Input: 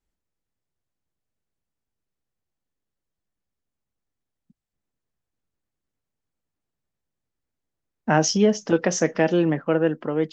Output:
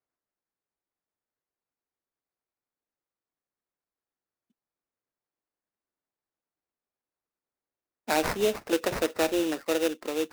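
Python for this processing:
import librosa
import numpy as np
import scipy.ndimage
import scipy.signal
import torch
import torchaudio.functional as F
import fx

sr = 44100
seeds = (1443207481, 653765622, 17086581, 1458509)

y = scipy.signal.sosfilt(scipy.signal.butter(4, 290.0, 'highpass', fs=sr, output='sos'), x)
y = fx.sample_hold(y, sr, seeds[0], rate_hz=3200.0, jitter_pct=20)
y = y * librosa.db_to_amplitude(-5.0)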